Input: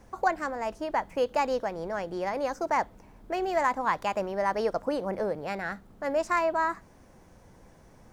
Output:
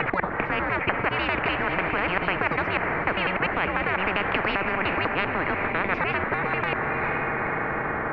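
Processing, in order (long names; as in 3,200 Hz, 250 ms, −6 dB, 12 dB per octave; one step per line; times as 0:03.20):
slices reordered back to front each 99 ms, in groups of 4
single-sideband voice off tune −190 Hz 370–2,300 Hz
feedback delay with all-pass diffusion 450 ms, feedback 49%, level −14 dB
boost into a limiter +21.5 dB
every bin compressed towards the loudest bin 10 to 1
level −6.5 dB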